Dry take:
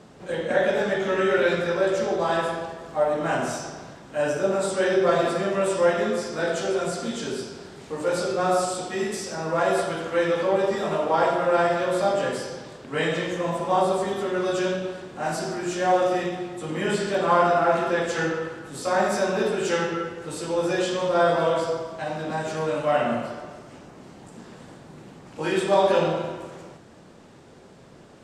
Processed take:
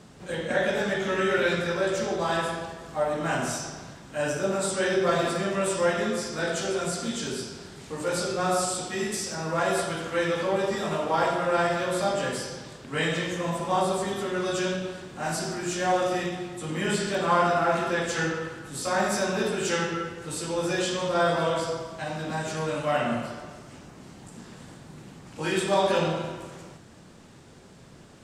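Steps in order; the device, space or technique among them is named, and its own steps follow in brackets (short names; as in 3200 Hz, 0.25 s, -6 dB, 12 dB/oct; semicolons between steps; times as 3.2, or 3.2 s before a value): smiley-face EQ (low shelf 160 Hz +3.5 dB; bell 520 Hz -5 dB 2 oct; high shelf 6000 Hz +5.5 dB)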